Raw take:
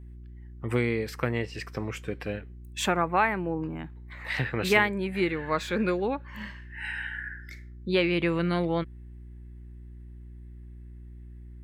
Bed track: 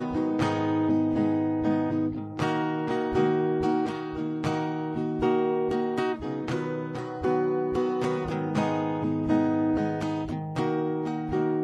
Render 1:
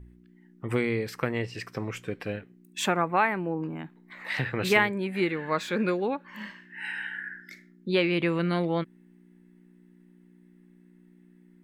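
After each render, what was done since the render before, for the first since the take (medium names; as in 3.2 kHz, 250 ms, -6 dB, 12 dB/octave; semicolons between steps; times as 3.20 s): de-hum 60 Hz, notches 2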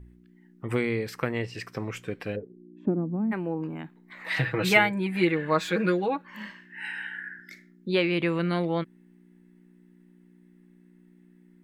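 2.35–3.31 s: resonant low-pass 480 Hz -> 200 Hz; 4.26–6.22 s: comb 6.2 ms, depth 85%; 6.88–7.39 s: Chebyshev high-pass 160 Hz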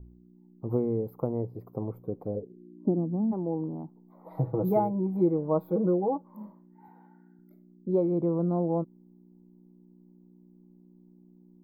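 inverse Chebyshev band-stop 1.6–9.7 kHz, stop band 40 dB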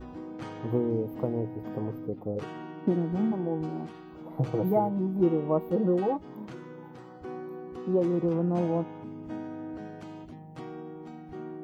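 add bed track -14 dB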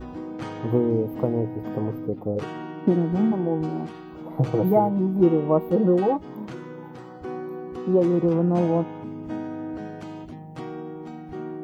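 trim +6 dB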